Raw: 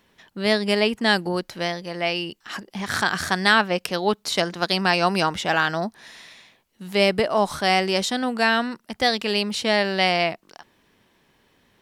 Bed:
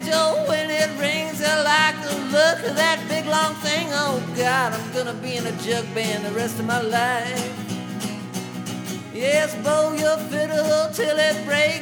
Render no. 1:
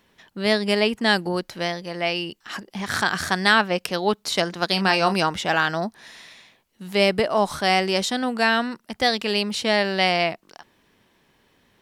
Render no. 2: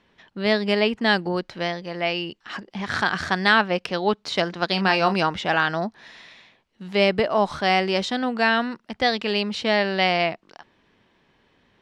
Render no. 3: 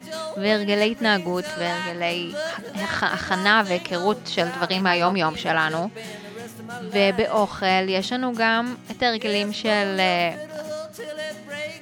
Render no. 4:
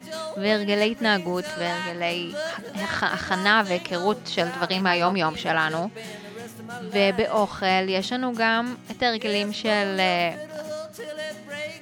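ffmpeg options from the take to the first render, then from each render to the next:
ffmpeg -i in.wav -filter_complex "[0:a]asettb=1/sr,asplit=3[link_01][link_02][link_03];[link_01]atrim=end=4.694[link_04];[link_02]atrim=start=4.69:end=5.14,asetpts=PTS-STARTPTS,afade=type=in:duration=0.004:curve=qsin,afade=type=out:start_time=0.446:duration=0.004:curve=qsin,asplit=2[link_05][link_06];[link_06]adelay=31,volume=-9.5dB[link_07];[link_05][link_07]amix=inputs=2:normalize=0,atrim=end_sample=19845[link_08];[link_03]atrim=start=5.136[link_09];[link_04][link_08]acrossfade=duration=0.004:curve1=hsin:curve2=qsin[link_10];[link_10][link_09]acrossfade=duration=0.004:curve1=qsin:curve2=hsin" out.wav
ffmpeg -i in.wav -af "lowpass=4200" out.wav
ffmpeg -i in.wav -i bed.wav -filter_complex "[1:a]volume=-12.5dB[link_01];[0:a][link_01]amix=inputs=2:normalize=0" out.wav
ffmpeg -i in.wav -af "volume=-1.5dB" out.wav

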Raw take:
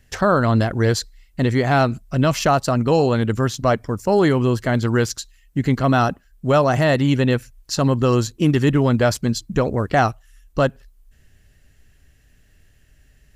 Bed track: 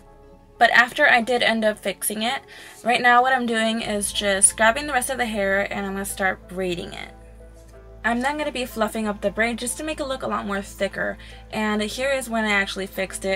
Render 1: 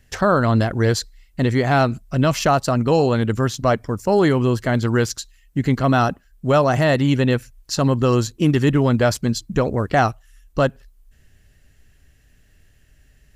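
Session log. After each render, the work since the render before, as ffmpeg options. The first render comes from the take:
ffmpeg -i in.wav -af anull out.wav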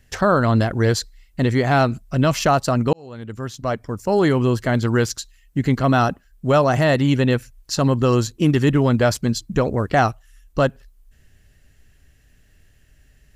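ffmpeg -i in.wav -filter_complex "[0:a]asplit=2[link_01][link_02];[link_01]atrim=end=2.93,asetpts=PTS-STARTPTS,afade=type=out:start_time=2.926:duration=0.004:curve=hsin[link_03];[link_02]atrim=start=2.93,asetpts=PTS-STARTPTS,afade=type=in:duration=1.45[link_04];[link_03][link_04]concat=n=2:v=0:a=1" out.wav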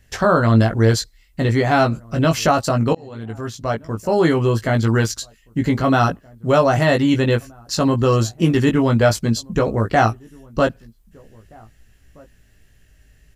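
ffmpeg -i in.wav -filter_complex "[0:a]asplit=2[link_01][link_02];[link_02]adelay=18,volume=-4dB[link_03];[link_01][link_03]amix=inputs=2:normalize=0,asplit=2[link_04][link_05];[link_05]adelay=1574,volume=-27dB,highshelf=frequency=4000:gain=-35.4[link_06];[link_04][link_06]amix=inputs=2:normalize=0" out.wav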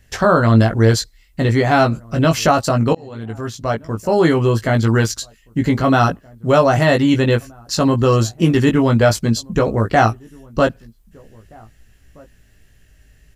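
ffmpeg -i in.wav -af "volume=2dB,alimiter=limit=-1dB:level=0:latency=1" out.wav

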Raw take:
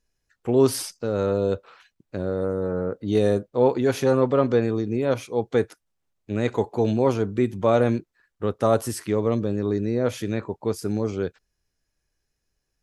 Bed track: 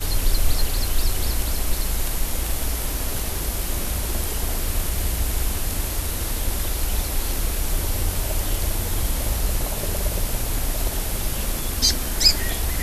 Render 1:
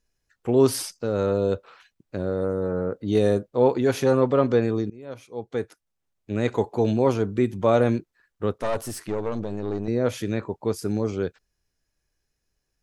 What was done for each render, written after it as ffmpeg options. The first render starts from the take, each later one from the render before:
ffmpeg -i in.wav -filter_complex "[0:a]asettb=1/sr,asplit=3[link_01][link_02][link_03];[link_01]atrim=end=8.584[link_04];[link_02]atrim=start=8.58:end=9.88,asetpts=PTS-STARTPTS,afade=type=in:duration=0.004:curve=qsin,afade=type=out:start_time=1.296:duration=0.004:curve=qsin,aeval=exprs='(tanh(11.2*val(0)+0.6)-tanh(0.6))/11.2':channel_layout=same[link_05];[link_03]atrim=start=9.876[link_06];[link_04][link_05]acrossfade=duration=0.004:curve1=hsin:curve2=qsin[link_07];[link_07][link_06]acrossfade=duration=0.004:curve1=qsin:curve2=hsin,asplit=2[link_08][link_09];[link_08]atrim=end=4.9,asetpts=PTS-STARTPTS,afade=type=out:start_time=4.896:duration=0.004:curve=hsin:silence=0.0668344[link_10];[link_09]atrim=start=4.9,asetpts=PTS-STARTPTS,afade=type=in:duration=1.54:silence=0.0668344[link_11];[link_10][link_11]concat=n=2:v=0:a=1" out.wav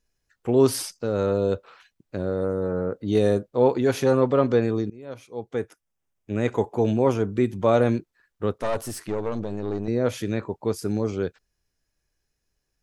ffmpeg -i in.wav -filter_complex "[0:a]asettb=1/sr,asplit=3[link_01][link_02][link_03];[link_01]atrim=end=5.524[link_04];[link_02]atrim=start=5.52:end=7.33,asetpts=PTS-STARTPTS,afade=type=in:duration=0.004:curve=qsin,afade=type=out:start_time=1.806:duration=0.004:curve=qsin,equalizer=frequency=4200:width=6.2:gain=-11.5[link_05];[link_03]atrim=start=7.326[link_06];[link_04][link_05]acrossfade=duration=0.004:curve1=hsin:curve2=qsin[link_07];[link_07][link_06]acrossfade=duration=0.004:curve1=qsin:curve2=hsin" out.wav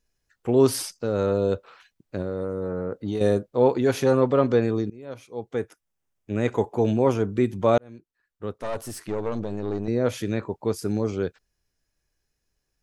ffmpeg -i in.wav -filter_complex "[0:a]asettb=1/sr,asplit=3[link_01][link_02][link_03];[link_01]atrim=end=2.214[link_04];[link_02]atrim=start=2.21:end=3.21,asetpts=PTS-STARTPTS,afade=type=in:duration=0.004:curve=qsin,afade=type=out:start_time=0.996:duration=0.004:curve=qsin,acompressor=threshold=-23dB:ratio=6:attack=3.2:release=140:knee=1:detection=peak[link_05];[link_03]atrim=start=3.206[link_06];[link_04][link_05]acrossfade=duration=0.004:curve1=hsin:curve2=qsin[link_07];[link_07][link_06]acrossfade=duration=0.004:curve1=qsin:curve2=hsin,asplit=2[link_08][link_09];[link_08]atrim=end=7.78,asetpts=PTS-STARTPTS,afade=type=out:start_time=7.776:duration=0.004:curve=hsin[link_10];[link_09]atrim=start=7.78,asetpts=PTS-STARTPTS,afade=type=in:duration=1.5[link_11];[link_10][link_11]concat=n=2:v=0:a=1" out.wav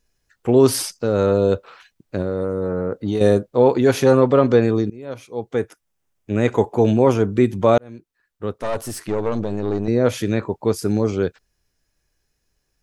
ffmpeg -i in.wav -af "volume=6dB,alimiter=limit=-3dB:level=0:latency=1" out.wav

